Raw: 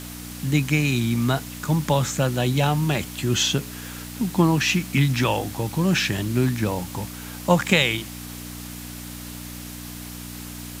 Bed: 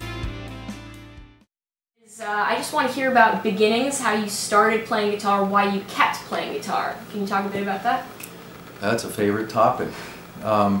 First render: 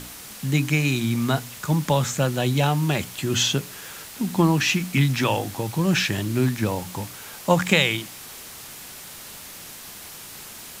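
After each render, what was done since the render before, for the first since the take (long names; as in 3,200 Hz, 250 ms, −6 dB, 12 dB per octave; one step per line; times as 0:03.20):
hum removal 60 Hz, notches 5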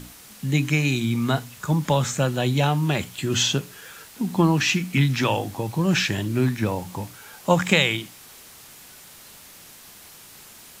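noise reduction from a noise print 6 dB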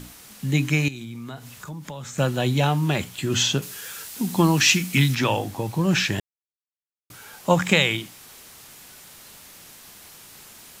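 0:00.88–0:02.18: downward compressor 4 to 1, threshold −35 dBFS
0:03.62–0:05.15: high-shelf EQ 3,300 Hz +10 dB
0:06.20–0:07.10: silence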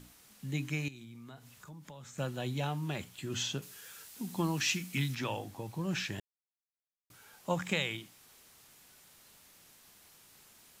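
level −14 dB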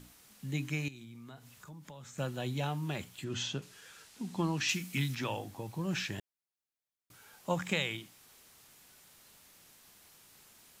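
0:03.24–0:04.69: high-frequency loss of the air 53 metres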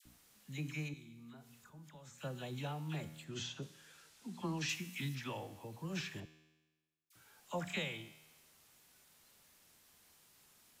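tuned comb filter 78 Hz, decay 1.2 s, harmonics all, mix 60%
all-pass dispersion lows, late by 57 ms, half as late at 1,100 Hz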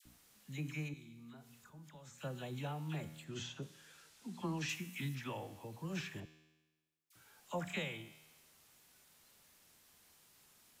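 dynamic equaliser 4,600 Hz, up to −5 dB, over −58 dBFS, Q 1.2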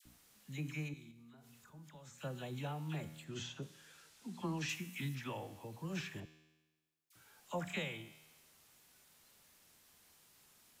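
0:01.11–0:01.68: downward compressor, threshold −56 dBFS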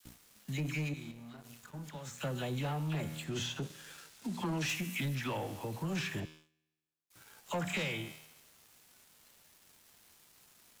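leveller curve on the samples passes 3
downward compressor 1.5 to 1, threshold −38 dBFS, peak gain reduction 3.5 dB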